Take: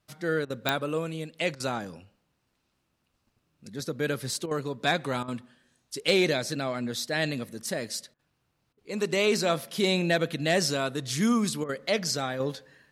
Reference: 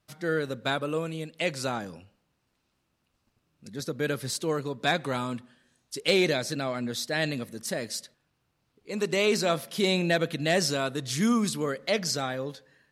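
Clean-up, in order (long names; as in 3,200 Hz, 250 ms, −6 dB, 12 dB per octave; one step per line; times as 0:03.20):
click removal
repair the gap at 0:00.45/0:01.55/0:04.46/0:05.23/0:08.14/0:08.73/0:11.64, 49 ms
level correction −5 dB, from 0:12.40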